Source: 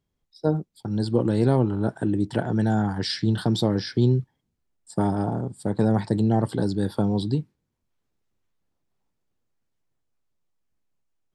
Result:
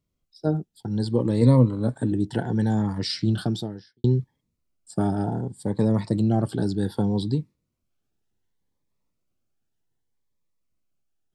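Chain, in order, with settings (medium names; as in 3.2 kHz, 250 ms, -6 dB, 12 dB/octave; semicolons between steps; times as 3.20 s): 1.41–2.12 s: rippled EQ curve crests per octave 1, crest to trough 13 dB; 3.41–4.04 s: fade out quadratic; Shepard-style phaser rising 0.66 Hz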